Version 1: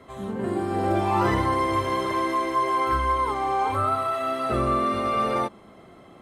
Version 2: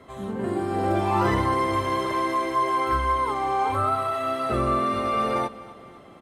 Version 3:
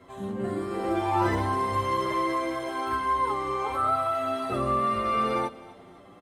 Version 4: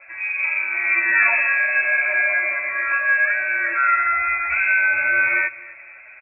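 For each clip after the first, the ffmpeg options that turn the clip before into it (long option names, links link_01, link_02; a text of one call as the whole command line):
ffmpeg -i in.wav -af "aecho=1:1:253|506|759|1012:0.126|0.0629|0.0315|0.0157" out.wav
ffmpeg -i in.wav -filter_complex "[0:a]asplit=2[link_01][link_02];[link_02]adelay=8.4,afreqshift=0.69[link_03];[link_01][link_03]amix=inputs=2:normalize=1" out.wav
ffmpeg -i in.wav -af "lowpass=frequency=2300:width_type=q:width=0.5098,lowpass=frequency=2300:width_type=q:width=0.6013,lowpass=frequency=2300:width_type=q:width=0.9,lowpass=frequency=2300:width_type=q:width=2.563,afreqshift=-2700,volume=7.5dB" out.wav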